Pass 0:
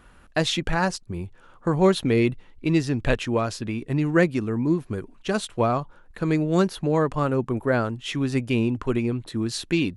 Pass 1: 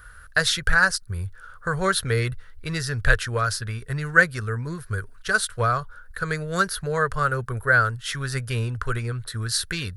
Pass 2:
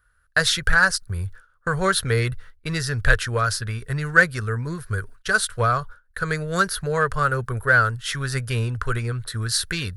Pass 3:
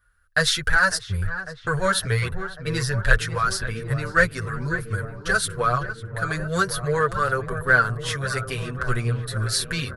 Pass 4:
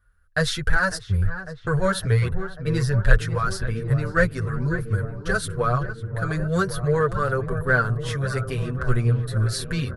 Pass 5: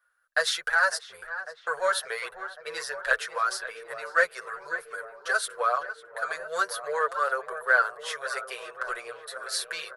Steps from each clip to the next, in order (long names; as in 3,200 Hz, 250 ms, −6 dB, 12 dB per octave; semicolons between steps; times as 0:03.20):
drawn EQ curve 100 Hz 0 dB, 310 Hz −27 dB, 440 Hz −8 dB, 870 Hz −15 dB, 1,500 Hz +8 dB, 2,500 Hz −11 dB, 4,700 Hz +1 dB, 7,100 Hz −3 dB, 10,000 Hz +7 dB; level +6.5 dB
noise gate with hold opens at −32 dBFS; in parallel at −11 dB: soft clipping −16.5 dBFS, distortion −10 dB
on a send: feedback echo with a low-pass in the loop 550 ms, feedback 80%, low-pass 1,800 Hz, level −11 dB; on the sum: barber-pole flanger 7.1 ms −0.96 Hz; level +2 dB
tilt shelving filter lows +5.5 dB, about 810 Hz; level −1 dB
inverse Chebyshev high-pass filter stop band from 280 Hz, stop band 40 dB